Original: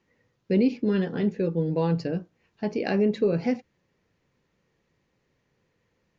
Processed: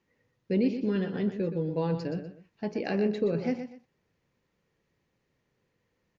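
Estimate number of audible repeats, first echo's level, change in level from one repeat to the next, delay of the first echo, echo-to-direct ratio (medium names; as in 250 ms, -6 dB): 2, -9.5 dB, -11.5 dB, 123 ms, -9.0 dB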